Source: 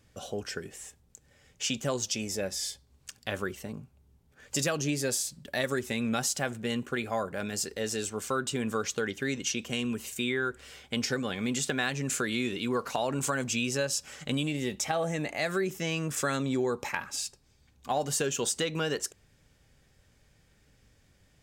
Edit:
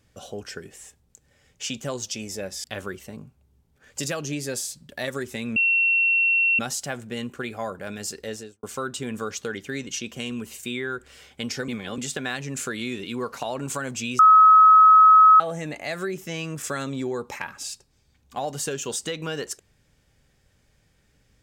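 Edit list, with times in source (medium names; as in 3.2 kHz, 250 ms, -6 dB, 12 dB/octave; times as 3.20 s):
2.64–3.20 s: delete
6.12 s: add tone 2.72 kHz -17 dBFS 1.03 s
7.79–8.16 s: studio fade out
11.21–11.51 s: reverse
13.72–14.93 s: bleep 1.28 kHz -9 dBFS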